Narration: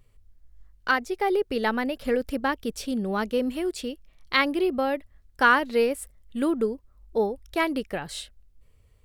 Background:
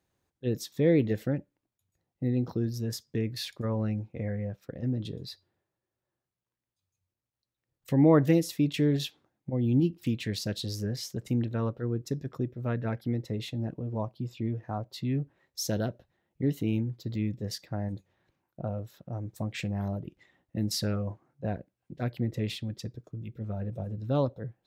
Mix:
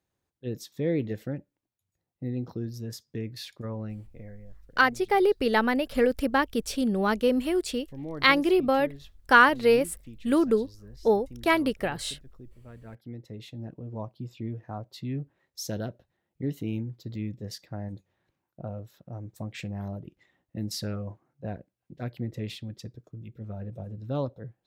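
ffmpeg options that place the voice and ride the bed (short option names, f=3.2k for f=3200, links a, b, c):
-filter_complex "[0:a]adelay=3900,volume=2dB[a];[1:a]volume=10dB,afade=t=out:st=3.62:d=0.86:silence=0.223872,afade=t=in:st=12.73:d=1.4:silence=0.199526[b];[a][b]amix=inputs=2:normalize=0"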